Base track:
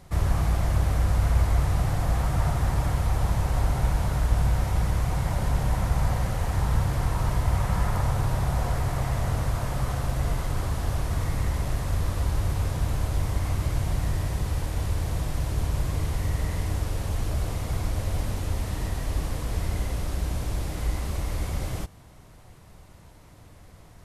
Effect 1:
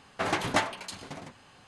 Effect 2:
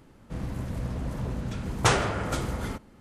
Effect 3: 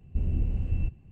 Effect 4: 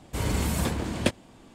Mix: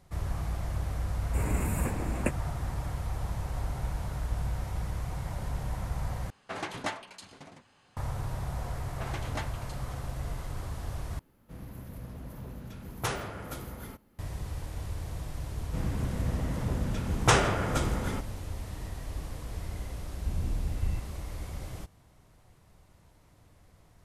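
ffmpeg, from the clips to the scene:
-filter_complex "[1:a]asplit=2[a][b];[2:a]asplit=2[c][d];[0:a]volume=-9.5dB[e];[4:a]asuperstop=centerf=4400:order=20:qfactor=1.1[f];[c]aexciter=amount=8:drive=3.8:freq=11k[g];[d]bandreject=f=4.3k:w=12[h];[e]asplit=3[i][j][k];[i]atrim=end=6.304[l];[a]atrim=end=1.67,asetpts=PTS-STARTPTS,volume=-8dB[m];[j]atrim=start=7.966:end=11.194[n];[g]atrim=end=3,asetpts=PTS-STARTPTS,volume=-10.5dB[o];[k]atrim=start=14.186[p];[f]atrim=end=1.54,asetpts=PTS-STARTPTS,volume=-5dB,afade=t=in:d=0.004:c=hsin,afade=t=out:st=1.536:d=0.004:c=hsin,adelay=1200[q];[b]atrim=end=1.67,asetpts=PTS-STARTPTS,volume=-12dB,afade=t=in:d=0.004:c=hsin,afade=t=out:st=1.666:d=0.004:c=hsin,adelay=8810[r];[h]atrim=end=3,asetpts=PTS-STARTPTS,afade=t=in:d=0.004:c=hsin,afade=t=out:st=2.996:d=0.004:c=hsin,adelay=15430[s];[3:a]atrim=end=1.11,asetpts=PTS-STARTPTS,volume=-4.5dB,afade=t=in:d=0.004:c=hsin,afade=t=out:st=1.106:d=0.004:c=hsin,adelay=20110[t];[l][m]acrossfade=d=0.004:c1=hsin:c2=hsin[u];[u][n]acrossfade=d=0.004:c1=hsin:c2=hsin[v];[v][o]acrossfade=d=0.004:c1=hsin:c2=hsin[w];[w][p]acrossfade=d=0.004:c1=hsin:c2=hsin[x];[x][q][r][s][t]amix=inputs=5:normalize=0"

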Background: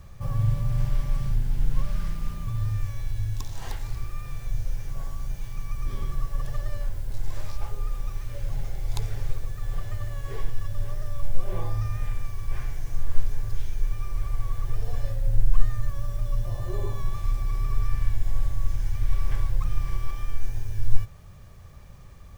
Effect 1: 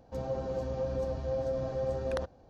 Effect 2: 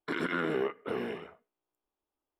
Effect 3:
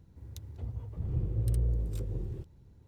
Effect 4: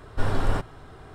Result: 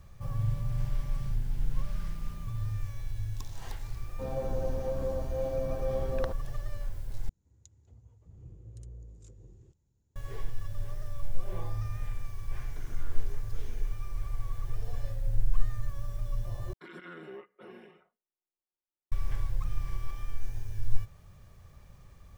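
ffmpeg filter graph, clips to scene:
-filter_complex "[2:a]asplit=2[a][b];[0:a]volume=-6.5dB[c];[1:a]lowpass=f=3.3k:p=1[d];[3:a]lowpass=f=6.9k:t=q:w=11[e];[a]alimiter=level_in=4dB:limit=-24dB:level=0:latency=1:release=71,volume=-4dB[f];[b]aecho=1:1:5.5:0.97[g];[c]asplit=3[h][i][j];[h]atrim=end=7.294[k];[e]atrim=end=2.87,asetpts=PTS-STARTPTS,volume=-17.5dB[l];[i]atrim=start=10.156:end=16.734[m];[g]atrim=end=2.39,asetpts=PTS-STARTPTS,volume=-17.5dB[n];[j]atrim=start=19.116[o];[d]atrim=end=2.49,asetpts=PTS-STARTPTS,volume=-0.5dB,afade=t=in:d=0.004:c=hsin,afade=t=out:st=2.486:d=0.004:c=hsin,adelay=4070[p];[f]atrim=end=2.39,asetpts=PTS-STARTPTS,volume=-17dB,afade=t=in:d=0.004:c=hsin,afade=t=out:st=2.386:d=0.004:c=hsin,adelay=559188S[q];[k][l]acrossfade=d=0.004:c1=hsin:c2=hsin[r];[r][m]acrossfade=d=0.004:c1=hsin:c2=hsin[s];[s][n]acrossfade=d=0.004:c1=hsin:c2=hsin[t];[t][o]acrossfade=d=0.004:c1=hsin:c2=hsin[u];[u][p][q]amix=inputs=3:normalize=0"

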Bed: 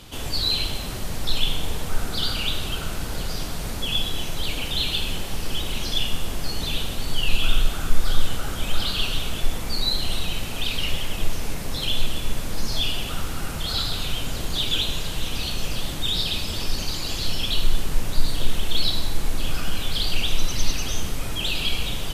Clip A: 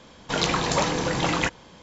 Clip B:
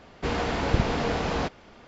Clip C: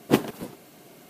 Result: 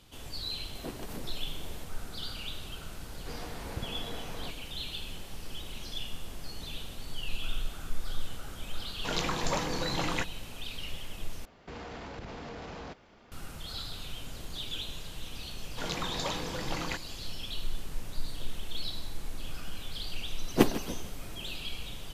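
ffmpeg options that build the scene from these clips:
-filter_complex "[3:a]asplit=2[a][b];[2:a]asplit=2[c][d];[1:a]asplit=2[e][f];[0:a]volume=-14dB[g];[a]acompressor=threshold=-37dB:ratio=6:attack=3.2:release=140:knee=1:detection=peak[h];[d]acompressor=threshold=-30dB:ratio=6:attack=0.25:release=64:knee=1:detection=peak[i];[b]aecho=1:1:155:0.158[j];[g]asplit=2[k][l];[k]atrim=end=11.454[m];[i]atrim=end=1.87,asetpts=PTS-STARTPTS,volume=-7.5dB[n];[l]atrim=start=13.316[o];[h]atrim=end=1.09,asetpts=PTS-STARTPTS,volume=-1dB,afade=t=in:d=0.004:c=hsin,afade=t=out:st=1.086:d=0.004:c=hsin,adelay=750[p];[c]atrim=end=1.87,asetpts=PTS-STARTPTS,volume=-16dB,afade=t=in:d=0.004:c=hsin,afade=t=out:st=1.866:d=0.004:c=hsin,adelay=3030[q];[e]atrim=end=1.82,asetpts=PTS-STARTPTS,volume=-8.5dB,afade=t=in:d=0.004:c=hsin,afade=t=out:st=1.816:d=0.004:c=hsin,adelay=8750[r];[f]atrim=end=1.82,asetpts=PTS-STARTPTS,volume=-12dB,afade=t=in:d=0.004:c=hsin,afade=t=out:st=1.816:d=0.004:c=hsin,adelay=15480[s];[j]atrim=end=1.09,asetpts=PTS-STARTPTS,volume=-2.5dB,afade=t=in:d=0.004:c=hsin,afade=t=out:st=1.086:d=0.004:c=hsin,adelay=20470[t];[m][n]acrossfade=d=0.004:c1=hsin:c2=hsin[u];[u][o]acrossfade=d=0.004:c1=hsin:c2=hsin[v];[v][p][q][r][s][t]amix=inputs=6:normalize=0"

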